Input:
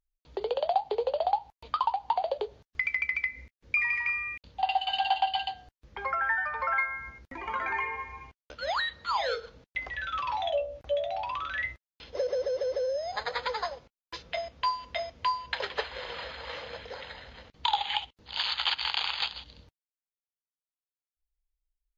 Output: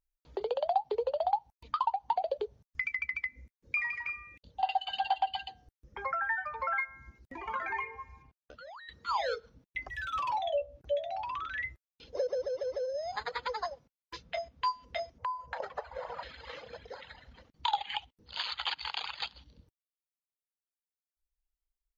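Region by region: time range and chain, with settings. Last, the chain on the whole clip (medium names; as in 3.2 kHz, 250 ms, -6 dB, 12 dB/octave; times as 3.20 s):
8.22–8.89 s: treble shelf 3.5 kHz -7.5 dB + compression 16:1, threshold -42 dBFS
9.89–10.39 s: waveshaping leveller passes 1 + three bands expanded up and down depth 70%
15.18–16.23 s: FFT filter 160 Hz 0 dB, 350 Hz -6 dB, 610 Hz +9 dB, 980 Hz +7 dB, 3.3 kHz -12 dB, 6.6 kHz -3 dB + compression 16:1, threshold -28 dBFS
whole clip: reverb removal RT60 1.7 s; peaking EQ 3.3 kHz -4 dB 1.7 oct; trim -1.5 dB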